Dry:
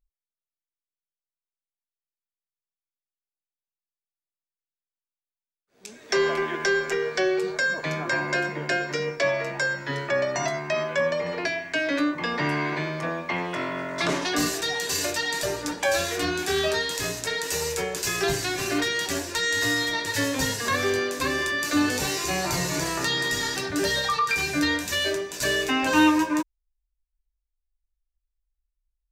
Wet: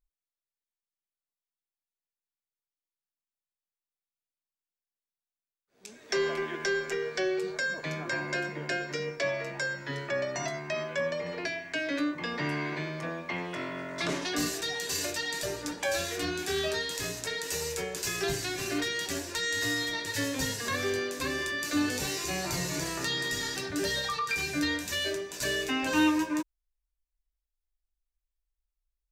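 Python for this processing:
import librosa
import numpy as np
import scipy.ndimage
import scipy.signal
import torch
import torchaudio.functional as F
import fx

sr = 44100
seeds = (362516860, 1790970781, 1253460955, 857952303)

y = fx.dynamic_eq(x, sr, hz=960.0, q=1.0, threshold_db=-36.0, ratio=4.0, max_db=-4)
y = F.gain(torch.from_numpy(y), -5.0).numpy()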